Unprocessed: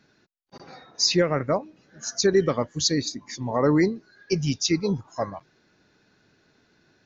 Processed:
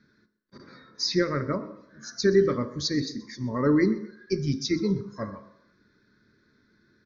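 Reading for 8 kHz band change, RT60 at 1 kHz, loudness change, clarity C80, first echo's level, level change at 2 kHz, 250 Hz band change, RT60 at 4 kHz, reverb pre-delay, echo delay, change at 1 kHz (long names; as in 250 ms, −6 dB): can't be measured, 0.75 s, −2.5 dB, 14.0 dB, −19.0 dB, −2.5 dB, −0.5 dB, 0.65 s, 3 ms, 127 ms, −5.5 dB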